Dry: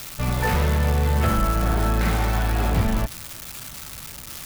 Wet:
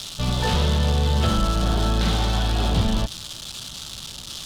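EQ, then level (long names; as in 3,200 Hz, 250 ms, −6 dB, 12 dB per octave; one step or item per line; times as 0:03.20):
high-frequency loss of the air 68 metres
parametric band 190 Hz +2.5 dB 0.3 octaves
high shelf with overshoot 2,700 Hz +7 dB, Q 3
0.0 dB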